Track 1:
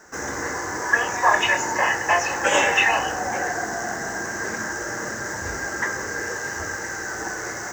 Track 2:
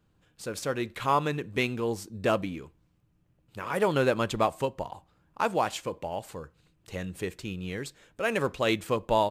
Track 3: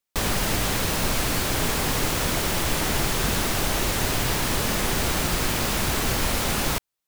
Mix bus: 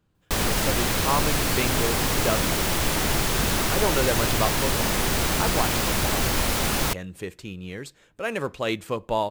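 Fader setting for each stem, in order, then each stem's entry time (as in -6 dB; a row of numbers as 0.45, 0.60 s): off, -0.5 dB, +0.5 dB; off, 0.00 s, 0.15 s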